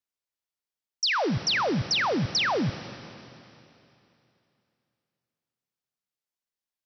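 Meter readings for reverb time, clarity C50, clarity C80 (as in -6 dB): 2.9 s, 12.0 dB, 13.0 dB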